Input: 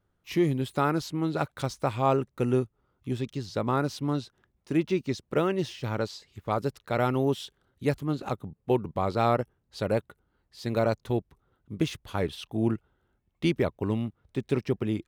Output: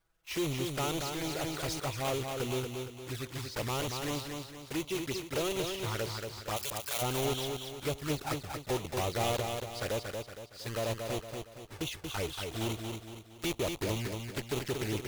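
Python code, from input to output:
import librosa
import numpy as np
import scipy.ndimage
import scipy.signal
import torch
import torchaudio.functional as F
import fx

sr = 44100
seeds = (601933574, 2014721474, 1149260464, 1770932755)

y = fx.block_float(x, sr, bits=3)
y = fx.tilt_eq(y, sr, slope=4.5, at=(6.56, 7.01), fade=0.02)
y = fx.env_flanger(y, sr, rest_ms=6.2, full_db=-23.5)
y = fx.peak_eq(y, sr, hz=210.0, db=-13.0, octaves=1.7)
y = 10.0 ** (-29.5 / 20.0) * np.tanh(y / 10.0 ** (-29.5 / 20.0))
y = fx.rider(y, sr, range_db=10, speed_s=2.0)
y = fx.echo_feedback(y, sr, ms=232, feedback_pct=43, wet_db=-5)
y = fx.sustainer(y, sr, db_per_s=36.0, at=(1.12, 1.8))
y = y * 10.0 ** (2.0 / 20.0)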